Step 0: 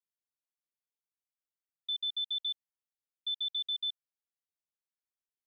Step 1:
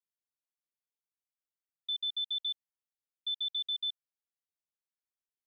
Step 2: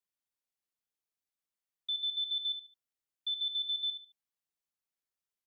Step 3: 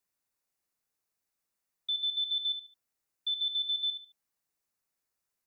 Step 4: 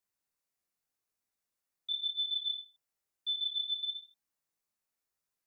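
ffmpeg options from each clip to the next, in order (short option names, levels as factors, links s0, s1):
-af anull
-af "aecho=1:1:72|144|216:0.355|0.0993|0.0278"
-af "equalizer=f=3300:w=1.5:g=-4.5,bandreject=f=3200:w=13,volume=2.37"
-af "flanger=delay=18.5:depth=3.8:speed=0.91"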